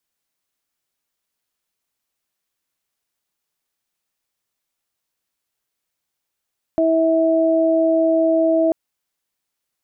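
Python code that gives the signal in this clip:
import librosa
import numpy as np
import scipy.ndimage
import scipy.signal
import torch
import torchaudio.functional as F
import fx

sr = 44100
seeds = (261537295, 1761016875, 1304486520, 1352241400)

y = fx.additive_steady(sr, length_s=1.94, hz=325.0, level_db=-17.5, upper_db=(2.5,))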